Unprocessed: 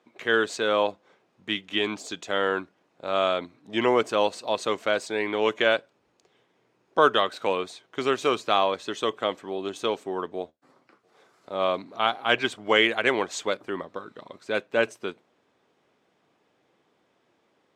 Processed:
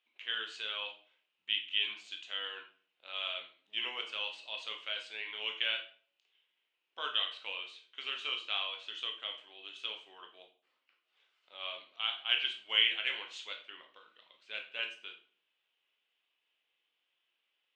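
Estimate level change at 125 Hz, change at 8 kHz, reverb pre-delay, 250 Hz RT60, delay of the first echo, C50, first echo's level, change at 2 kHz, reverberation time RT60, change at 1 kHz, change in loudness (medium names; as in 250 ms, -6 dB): under -35 dB, under -15 dB, 14 ms, 0.60 s, no echo, 9.5 dB, no echo, -10.0 dB, 0.45 s, -20.5 dB, -9.5 dB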